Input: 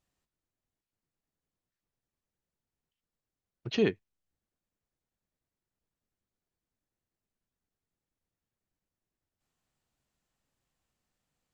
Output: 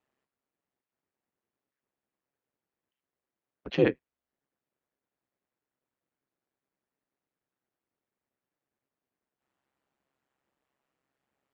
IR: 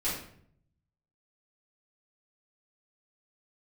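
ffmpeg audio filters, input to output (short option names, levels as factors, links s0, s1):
-filter_complex "[0:a]acrossover=split=190 2700:gain=0.0631 1 0.178[s0][s1][s2];[s0][s1][s2]amix=inputs=3:normalize=0,aeval=exprs='val(0)*sin(2*PI*67*n/s)':c=same,volume=2.37"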